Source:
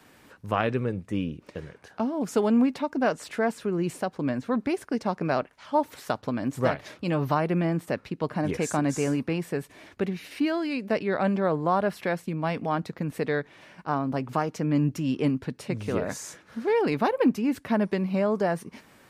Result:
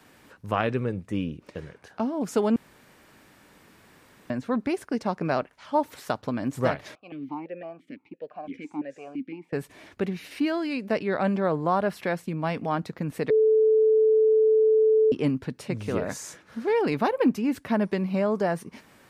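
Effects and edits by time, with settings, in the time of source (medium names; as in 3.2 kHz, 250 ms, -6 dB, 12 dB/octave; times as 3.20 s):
2.56–4.30 s: room tone
6.95–9.53 s: stepped vowel filter 5.9 Hz
13.30–15.12 s: bleep 437 Hz -16 dBFS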